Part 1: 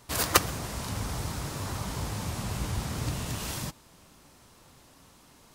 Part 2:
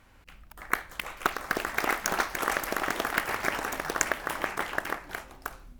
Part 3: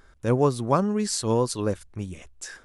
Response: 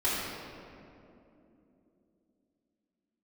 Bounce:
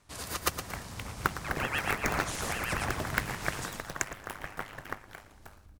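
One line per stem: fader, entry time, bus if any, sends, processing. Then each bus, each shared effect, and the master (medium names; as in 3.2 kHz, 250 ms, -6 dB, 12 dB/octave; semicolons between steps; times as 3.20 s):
-4.0 dB, 0.00 s, bus A, no send, echo send -4 dB, none
-1.0 dB, 0.00 s, no bus, no send, echo send -16 dB, octave divider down 2 oct, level +4 dB; ring modulator 51 Hz
+0.5 dB, 1.20 s, bus A, no send, echo send -7.5 dB, high-pass 340 Hz; ring modulator with a swept carrier 1.2 kHz, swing 90%, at 4.4 Hz
bus A: 0.0 dB, Chebyshev low-pass 9.4 kHz; compression, threshold -32 dBFS, peak gain reduction 12.5 dB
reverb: none
echo: feedback delay 115 ms, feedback 46%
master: upward expansion 1.5:1, over -38 dBFS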